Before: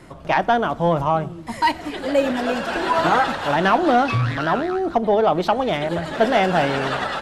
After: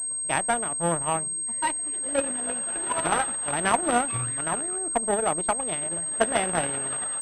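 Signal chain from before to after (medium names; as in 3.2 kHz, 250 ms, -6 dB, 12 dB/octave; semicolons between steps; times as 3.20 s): reverse echo 514 ms -24 dB; Chebyshev shaper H 3 -11 dB, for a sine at -6 dBFS; class-D stage that switches slowly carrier 8.4 kHz; trim -1.5 dB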